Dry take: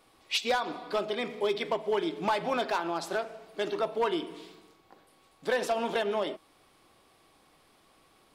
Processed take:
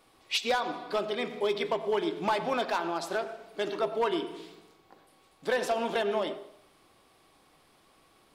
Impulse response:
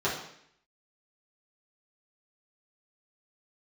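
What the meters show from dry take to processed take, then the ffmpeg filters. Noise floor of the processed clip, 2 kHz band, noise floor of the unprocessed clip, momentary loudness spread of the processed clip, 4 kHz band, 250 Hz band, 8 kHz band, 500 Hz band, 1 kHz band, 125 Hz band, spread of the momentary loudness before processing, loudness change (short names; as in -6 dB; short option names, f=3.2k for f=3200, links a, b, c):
-63 dBFS, 0.0 dB, -64 dBFS, 8 LU, 0.0 dB, 0.0 dB, 0.0 dB, +0.5 dB, +0.5 dB, 0.0 dB, 7 LU, 0.0 dB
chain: -filter_complex "[0:a]asplit=2[a][b];[1:a]atrim=start_sample=2205,adelay=87[c];[b][c]afir=irnorm=-1:irlink=0,volume=-24.5dB[d];[a][d]amix=inputs=2:normalize=0"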